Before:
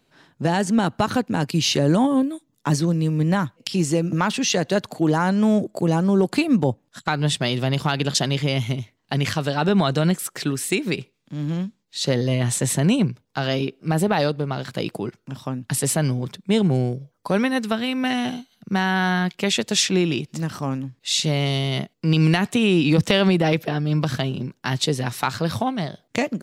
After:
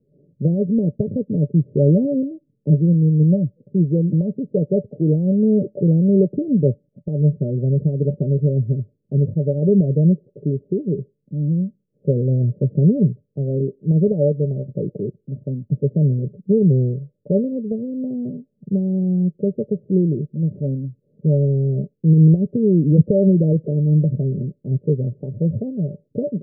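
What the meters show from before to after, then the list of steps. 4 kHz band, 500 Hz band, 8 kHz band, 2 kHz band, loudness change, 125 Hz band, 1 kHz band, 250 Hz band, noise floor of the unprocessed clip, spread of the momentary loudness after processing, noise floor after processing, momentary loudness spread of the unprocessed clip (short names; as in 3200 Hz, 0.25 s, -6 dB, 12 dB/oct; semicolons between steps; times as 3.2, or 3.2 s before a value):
under -40 dB, +2.5 dB, under -40 dB, under -40 dB, +2.5 dB, +6.0 dB, under -30 dB, +3.0 dB, -68 dBFS, 11 LU, -69 dBFS, 9 LU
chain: rippled Chebyshev low-pass 600 Hz, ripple 9 dB; gain +7 dB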